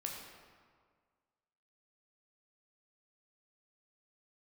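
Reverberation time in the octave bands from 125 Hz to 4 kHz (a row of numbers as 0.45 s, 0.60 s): 1.8 s, 1.8 s, 1.8 s, 1.8 s, 1.5 s, 1.1 s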